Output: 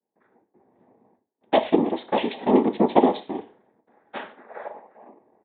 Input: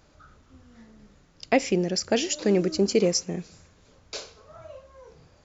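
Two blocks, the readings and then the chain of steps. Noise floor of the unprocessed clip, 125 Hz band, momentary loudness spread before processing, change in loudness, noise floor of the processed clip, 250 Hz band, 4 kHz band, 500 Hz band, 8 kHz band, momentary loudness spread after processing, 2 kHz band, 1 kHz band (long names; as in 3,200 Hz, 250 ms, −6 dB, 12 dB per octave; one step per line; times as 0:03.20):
−59 dBFS, −5.0 dB, 16 LU, +2.0 dB, −83 dBFS, +3.5 dB, −6.0 dB, +2.0 dB, can't be measured, 20 LU, −2.0 dB, +10.5 dB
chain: gain on a spectral selection 0:03.86–0:04.69, 610–2,700 Hz +11 dB
noise gate with hold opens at −46 dBFS
low-pass that shuts in the quiet parts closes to 490 Hz, open at −21.5 dBFS
low shelf with overshoot 260 Hz −13 dB, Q 3
cochlear-implant simulation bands 6
reverb whose tail is shaped and stops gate 150 ms falling, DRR 9 dB
downsampling to 8,000 Hz
level −1.5 dB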